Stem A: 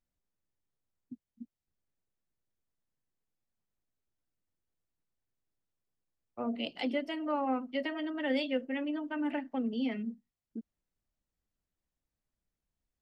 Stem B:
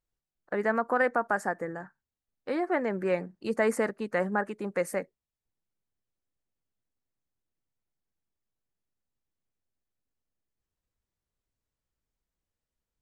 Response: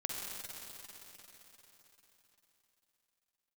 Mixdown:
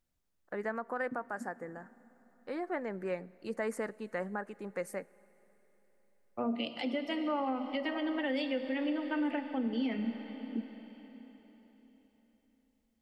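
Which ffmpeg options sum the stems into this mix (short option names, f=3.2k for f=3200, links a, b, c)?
-filter_complex "[0:a]volume=2dB,asplit=2[a][b];[b]volume=-8dB[c];[1:a]volume=-8.5dB,asplit=2[d][e];[e]volume=-23.5dB[f];[2:a]atrim=start_sample=2205[g];[c][f]amix=inputs=2:normalize=0[h];[h][g]afir=irnorm=-1:irlink=0[i];[a][d][i]amix=inputs=3:normalize=0,alimiter=level_in=1dB:limit=-24dB:level=0:latency=1:release=258,volume=-1dB"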